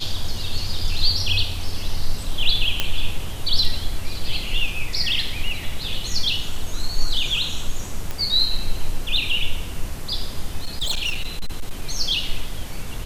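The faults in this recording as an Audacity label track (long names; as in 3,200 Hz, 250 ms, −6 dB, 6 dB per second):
2.800000	2.800000	click −4 dBFS
8.110000	8.110000	click −13 dBFS
10.630000	11.850000	clipping −19 dBFS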